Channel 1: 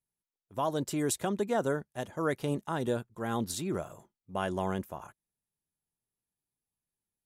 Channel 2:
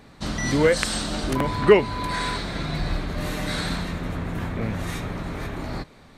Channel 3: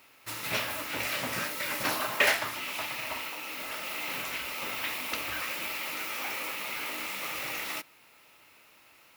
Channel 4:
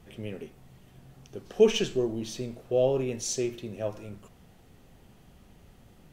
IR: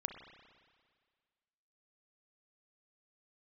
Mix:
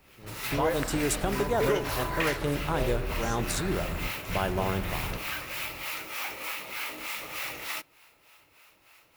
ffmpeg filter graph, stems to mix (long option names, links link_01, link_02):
-filter_complex "[0:a]volume=1.5dB,asplit=3[link_01][link_02][link_03];[link_02]volume=-4dB[link_04];[1:a]highshelf=frequency=2300:width_type=q:width=1.5:gain=-7.5,volume=-8dB,asplit=2[link_05][link_06];[link_06]volume=-11dB[link_07];[2:a]acrossover=split=640[link_08][link_09];[link_08]aeval=exprs='val(0)*(1-0.7/2+0.7/2*cos(2*PI*3.3*n/s))':channel_layout=same[link_10];[link_09]aeval=exprs='val(0)*(1-0.7/2-0.7/2*cos(2*PI*3.3*n/s))':channel_layout=same[link_11];[link_10][link_11]amix=inputs=2:normalize=0,volume=2.5dB[link_12];[3:a]volume=-11.5dB[link_13];[link_03]apad=whole_len=272315[link_14];[link_05][link_14]sidechaingate=range=-33dB:threshold=-56dB:ratio=16:detection=peak[link_15];[link_01][link_15][link_12]amix=inputs=3:normalize=0,lowshelf=frequency=76:gain=10,acompressor=threshold=-27dB:ratio=5,volume=0dB[link_16];[4:a]atrim=start_sample=2205[link_17];[link_04][link_07]amix=inputs=2:normalize=0[link_18];[link_18][link_17]afir=irnorm=-1:irlink=0[link_19];[link_13][link_16][link_19]amix=inputs=3:normalize=0,equalizer=frequency=220:width_type=o:width=0.53:gain=-6"